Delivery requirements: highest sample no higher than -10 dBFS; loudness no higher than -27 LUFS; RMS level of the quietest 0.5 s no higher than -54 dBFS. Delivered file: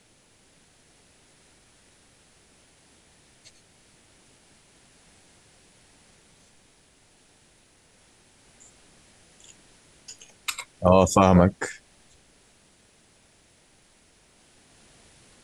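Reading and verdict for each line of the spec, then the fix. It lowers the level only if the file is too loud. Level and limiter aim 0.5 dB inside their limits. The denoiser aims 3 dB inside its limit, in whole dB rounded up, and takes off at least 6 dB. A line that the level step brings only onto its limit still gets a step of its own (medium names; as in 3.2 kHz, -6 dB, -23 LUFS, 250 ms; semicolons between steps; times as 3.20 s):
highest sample -4.0 dBFS: fail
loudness -21.0 LUFS: fail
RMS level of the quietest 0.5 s -60 dBFS: pass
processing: trim -6.5 dB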